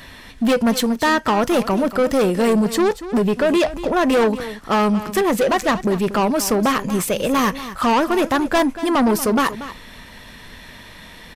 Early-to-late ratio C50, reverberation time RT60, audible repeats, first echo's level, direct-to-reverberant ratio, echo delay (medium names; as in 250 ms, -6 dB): no reverb, no reverb, 1, -14.0 dB, no reverb, 235 ms